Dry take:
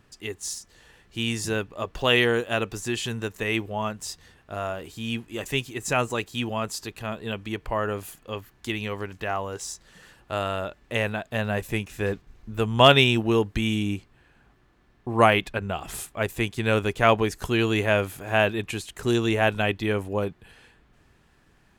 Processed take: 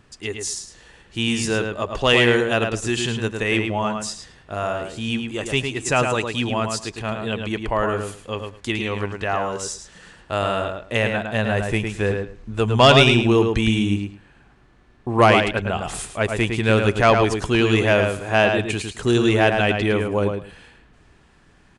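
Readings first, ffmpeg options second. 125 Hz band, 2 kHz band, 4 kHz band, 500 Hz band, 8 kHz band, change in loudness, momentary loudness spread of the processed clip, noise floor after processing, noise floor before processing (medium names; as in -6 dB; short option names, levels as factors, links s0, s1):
+6.0 dB, +5.0 dB, +4.0 dB, +5.5 dB, +5.0 dB, +5.0 dB, 13 LU, -54 dBFS, -61 dBFS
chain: -filter_complex "[0:a]asoftclip=type=tanh:threshold=0.335,aresample=22050,aresample=44100,asplit=2[s0][s1];[s1]adelay=108,lowpass=f=4200:p=1,volume=0.562,asplit=2[s2][s3];[s3]adelay=108,lowpass=f=4200:p=1,volume=0.18,asplit=2[s4][s5];[s5]adelay=108,lowpass=f=4200:p=1,volume=0.18[s6];[s0][s2][s4][s6]amix=inputs=4:normalize=0,volume=1.78"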